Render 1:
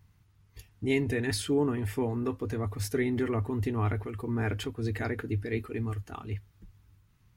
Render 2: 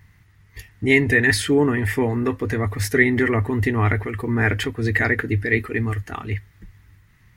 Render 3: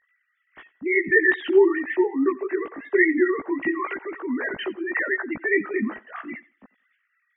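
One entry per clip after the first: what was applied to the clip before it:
parametric band 1,900 Hz +14 dB 0.44 octaves; level +9 dB
three sine waves on the formant tracks; multi-voice chorus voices 4, 0.54 Hz, delay 17 ms, depth 2 ms; feedback echo with a high-pass in the loop 89 ms, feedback 25%, high-pass 240 Hz, level −20 dB

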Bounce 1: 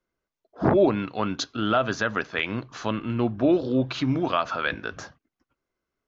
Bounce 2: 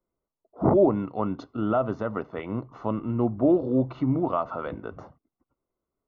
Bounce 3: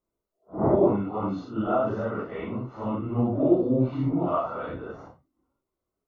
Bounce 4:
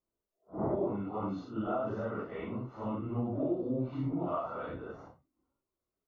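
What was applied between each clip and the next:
Savitzky-Golay smoothing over 65 samples
random phases in long frames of 200 ms
downward compressor 3 to 1, threshold −24 dBFS, peak gain reduction 8 dB; level −6 dB

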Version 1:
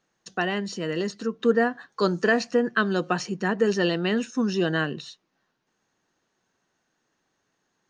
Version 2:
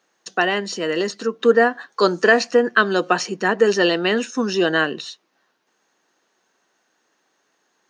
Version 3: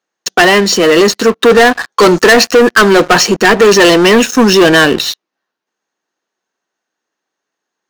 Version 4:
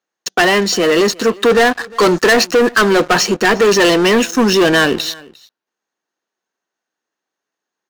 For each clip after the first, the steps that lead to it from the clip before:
high-pass filter 320 Hz 12 dB per octave; level +8 dB
leveller curve on the samples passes 5
single-tap delay 353 ms −23.5 dB; level −5 dB

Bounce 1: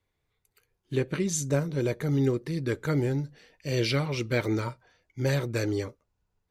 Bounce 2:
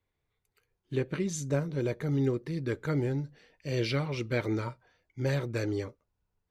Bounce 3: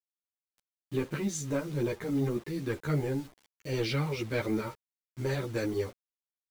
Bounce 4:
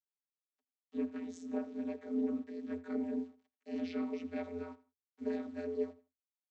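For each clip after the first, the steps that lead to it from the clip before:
high-shelf EQ 6,100 Hz −9 dB; level −3 dB
leveller curve on the samples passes 1; bit-depth reduction 8 bits, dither none; string-ensemble chorus
amplitude modulation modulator 110 Hz, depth 100%; repeating echo 83 ms, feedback 26%, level −19 dB; channel vocoder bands 32, square 85.9 Hz; level −1 dB

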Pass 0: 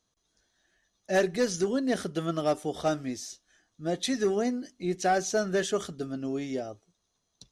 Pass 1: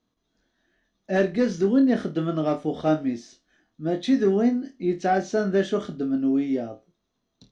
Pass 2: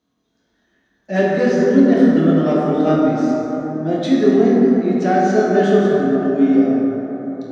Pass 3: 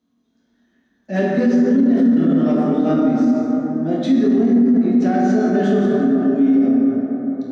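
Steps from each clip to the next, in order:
low-pass filter 3,500 Hz 12 dB per octave; parametric band 250 Hz +9.5 dB 1.1 octaves; flutter between parallel walls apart 4.4 metres, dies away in 0.22 s
high-pass filter 75 Hz; dense smooth reverb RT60 4.5 s, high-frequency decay 0.3×, DRR −5 dB; level +2 dB
parametric band 240 Hz +14.5 dB 0.34 octaves; brickwall limiter −4.5 dBFS, peak gain reduction 11 dB; level −3.5 dB

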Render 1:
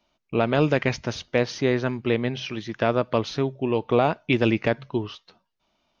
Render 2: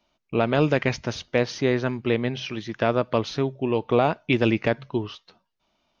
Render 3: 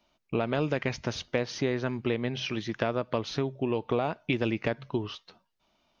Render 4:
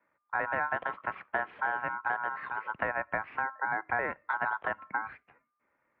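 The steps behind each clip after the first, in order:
no processing that can be heard
downward compressor 3 to 1, threshold −26 dBFS, peak gain reduction 9 dB
tape wow and flutter 27 cents; ring modulation 1,300 Hz; single-sideband voice off tune −99 Hz 190–2,300 Hz

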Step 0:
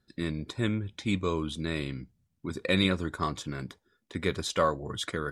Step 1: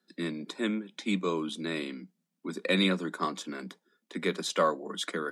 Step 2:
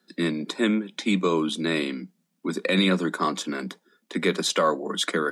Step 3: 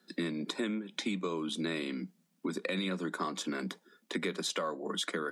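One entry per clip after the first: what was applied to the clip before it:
Butterworth high-pass 170 Hz 96 dB per octave
brickwall limiter −20 dBFS, peak gain reduction 7.5 dB; level +8.5 dB
downward compressor, threshold −32 dBFS, peak gain reduction 14.5 dB

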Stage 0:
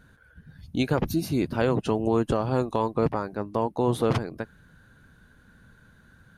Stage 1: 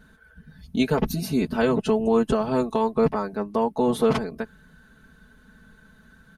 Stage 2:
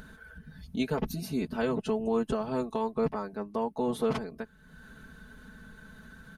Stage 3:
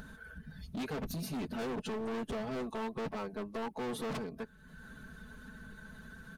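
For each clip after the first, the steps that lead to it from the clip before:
comb filter 4.6 ms, depth 94%
upward compression, threshold −30 dBFS; level −8 dB
spectral magnitudes quantised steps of 15 dB; gain into a clipping stage and back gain 35 dB

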